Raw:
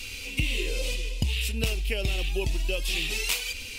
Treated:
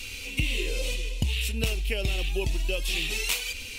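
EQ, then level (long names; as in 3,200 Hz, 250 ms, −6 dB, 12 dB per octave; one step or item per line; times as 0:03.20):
notch filter 4,900 Hz, Q 18
0.0 dB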